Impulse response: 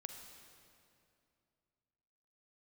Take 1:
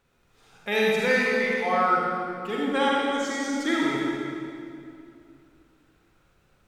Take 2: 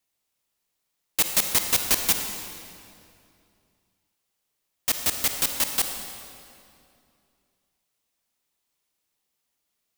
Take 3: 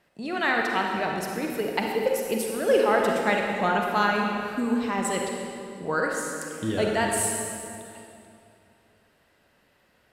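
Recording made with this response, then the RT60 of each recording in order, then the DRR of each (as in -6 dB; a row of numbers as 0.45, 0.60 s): 2; 2.6, 2.6, 2.6 s; -4.5, 5.0, 0.5 dB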